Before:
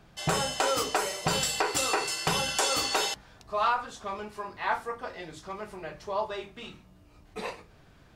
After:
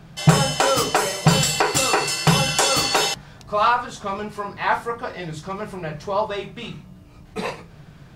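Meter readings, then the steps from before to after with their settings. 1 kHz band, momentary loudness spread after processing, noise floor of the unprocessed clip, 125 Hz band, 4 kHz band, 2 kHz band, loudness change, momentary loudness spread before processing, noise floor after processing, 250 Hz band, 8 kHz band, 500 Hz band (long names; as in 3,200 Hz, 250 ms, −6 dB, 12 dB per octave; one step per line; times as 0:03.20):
+8.0 dB, 14 LU, −57 dBFS, +17.5 dB, +8.0 dB, +8.0 dB, +8.5 dB, 15 LU, −45 dBFS, +14.0 dB, +8.0 dB, +8.5 dB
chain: parametric band 150 Hz +11.5 dB 0.63 octaves
level +8 dB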